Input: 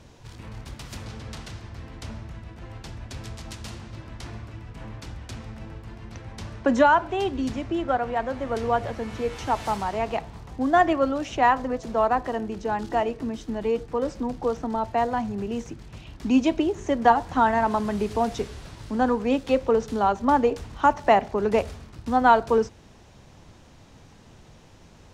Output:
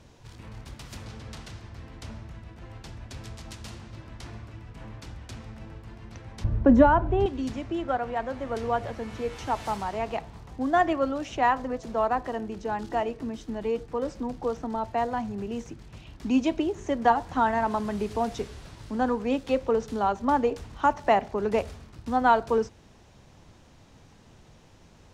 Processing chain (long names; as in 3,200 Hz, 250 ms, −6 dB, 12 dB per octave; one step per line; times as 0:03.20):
0:06.44–0:07.26: spectral tilt −4.5 dB per octave
level −3.5 dB